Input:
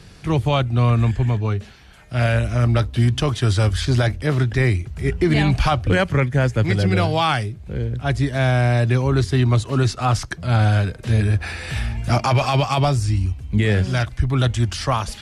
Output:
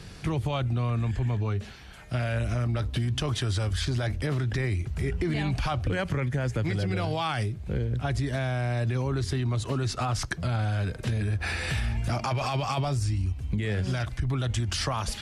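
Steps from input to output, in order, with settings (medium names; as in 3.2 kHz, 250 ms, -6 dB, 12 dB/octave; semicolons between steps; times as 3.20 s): peak limiter -16.5 dBFS, peak gain reduction 8.5 dB; compression, threshold -24 dBFS, peak gain reduction 5 dB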